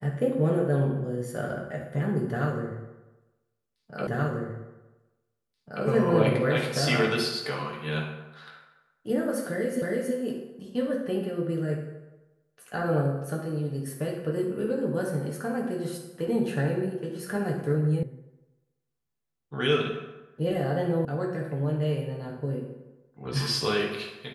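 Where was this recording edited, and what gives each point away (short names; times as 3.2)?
4.07 repeat of the last 1.78 s
9.82 repeat of the last 0.32 s
18.03 sound cut off
21.05 sound cut off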